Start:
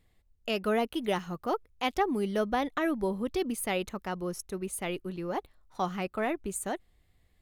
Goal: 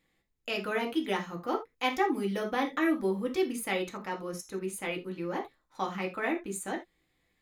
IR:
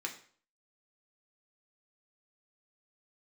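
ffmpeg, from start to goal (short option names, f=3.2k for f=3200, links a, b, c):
-filter_complex "[0:a]asettb=1/sr,asplit=3[a][b][c];[a]atrim=end=1.704[d];[b]atrim=start=1.7:end=3.41,asetpts=PTS-STARTPTS,afade=t=in:d=0.004:c=qsin,afade=t=out:st=1.706:d=0.004:c=qsin,highshelf=f=10k:g=6[e];[c]atrim=start=3.406[f];[d][e]acrossfade=d=0.004:c1=hsin:c2=qsin[g];[g][f]acrossfade=d=0.004:c1=qsin:c2=hsin[h];[1:a]atrim=start_sample=2205,atrim=end_sample=3969[i];[h][i]afir=irnorm=-1:irlink=0"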